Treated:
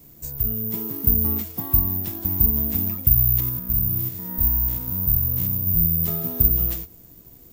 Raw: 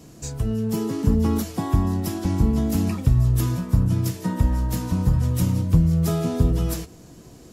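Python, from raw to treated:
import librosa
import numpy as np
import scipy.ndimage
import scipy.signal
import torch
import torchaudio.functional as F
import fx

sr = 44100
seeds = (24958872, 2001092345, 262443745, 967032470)

y = fx.spec_steps(x, sr, hold_ms=100, at=(3.4, 6.01))
y = fx.low_shelf(y, sr, hz=79.0, db=10.5)
y = (np.kron(y[::3], np.eye(3)[0]) * 3)[:len(y)]
y = y * 10.0 ** (-9.5 / 20.0)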